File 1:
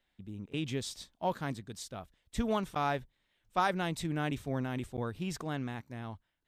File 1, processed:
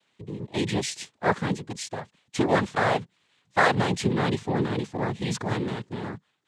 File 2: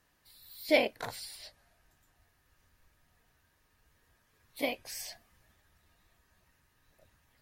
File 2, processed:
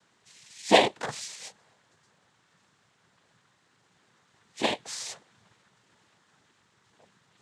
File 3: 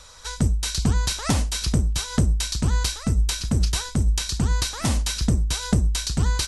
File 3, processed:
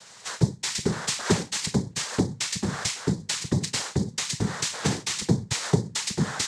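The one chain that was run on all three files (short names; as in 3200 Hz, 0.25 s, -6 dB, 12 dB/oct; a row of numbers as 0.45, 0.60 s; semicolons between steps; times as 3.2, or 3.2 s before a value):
noise vocoder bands 6; match loudness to -27 LUFS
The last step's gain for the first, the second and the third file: +9.5, +6.5, 0.0 dB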